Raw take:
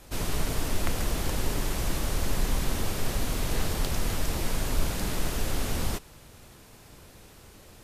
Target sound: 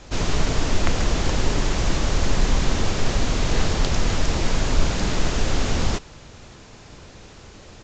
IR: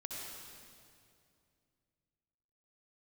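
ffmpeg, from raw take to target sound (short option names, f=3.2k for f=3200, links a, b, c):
-af "aresample=16000,aresample=44100,volume=7.5dB"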